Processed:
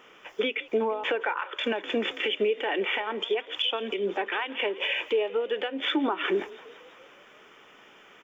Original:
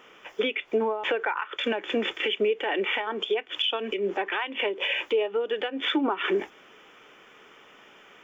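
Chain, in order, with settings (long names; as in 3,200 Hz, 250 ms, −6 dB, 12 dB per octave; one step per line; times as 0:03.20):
echo with shifted repeats 169 ms, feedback 64%, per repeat +37 Hz, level −20 dB
level −1 dB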